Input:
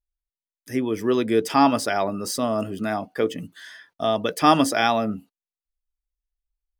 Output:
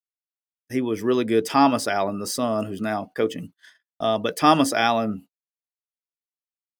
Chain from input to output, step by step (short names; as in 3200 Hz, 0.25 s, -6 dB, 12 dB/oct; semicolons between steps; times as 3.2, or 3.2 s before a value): gate -40 dBFS, range -47 dB